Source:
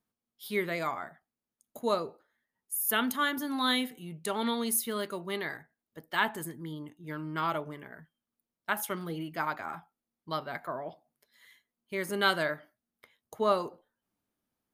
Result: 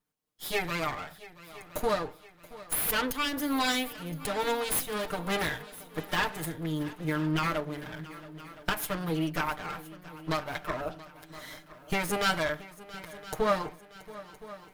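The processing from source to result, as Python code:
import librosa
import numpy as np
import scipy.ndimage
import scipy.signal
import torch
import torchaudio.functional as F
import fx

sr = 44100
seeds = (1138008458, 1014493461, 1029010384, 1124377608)

y = fx.lower_of_two(x, sr, delay_ms=6.6)
y = fx.recorder_agc(y, sr, target_db=-21.0, rise_db_per_s=14.0, max_gain_db=30)
y = fx.echo_heads(y, sr, ms=339, heads='second and third', feedback_pct=48, wet_db=-18.5)
y = F.gain(torch.from_numpy(y), 1.5).numpy()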